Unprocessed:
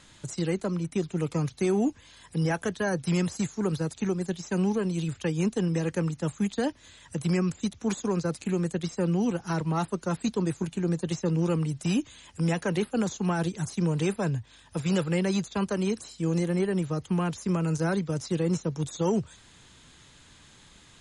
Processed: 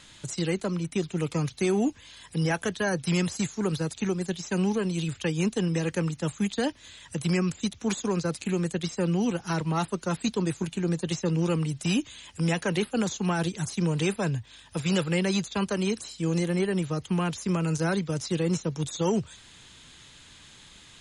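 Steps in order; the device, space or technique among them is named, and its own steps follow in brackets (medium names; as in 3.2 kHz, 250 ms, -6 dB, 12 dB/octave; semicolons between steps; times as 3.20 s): presence and air boost (peaking EQ 3.1 kHz +5.5 dB 1.6 oct; treble shelf 9.2 kHz +5.5 dB)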